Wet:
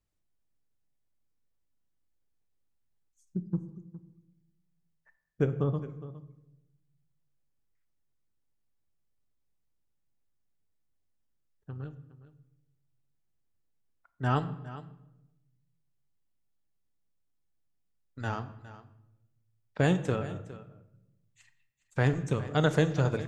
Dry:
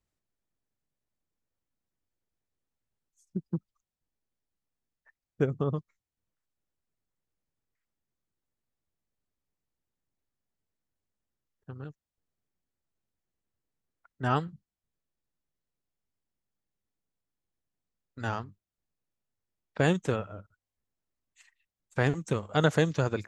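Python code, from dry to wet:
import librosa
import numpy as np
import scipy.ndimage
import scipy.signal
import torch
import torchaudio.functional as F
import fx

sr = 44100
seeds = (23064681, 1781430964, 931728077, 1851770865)

y = fx.low_shelf(x, sr, hz=160.0, db=5.0)
y = y + 10.0 ** (-16.0 / 20.0) * np.pad(y, (int(411 * sr / 1000.0), 0))[:len(y)]
y = fx.room_shoebox(y, sr, seeds[0], volume_m3=340.0, walls='mixed', distance_m=0.37)
y = y * librosa.db_to_amplitude(-2.5)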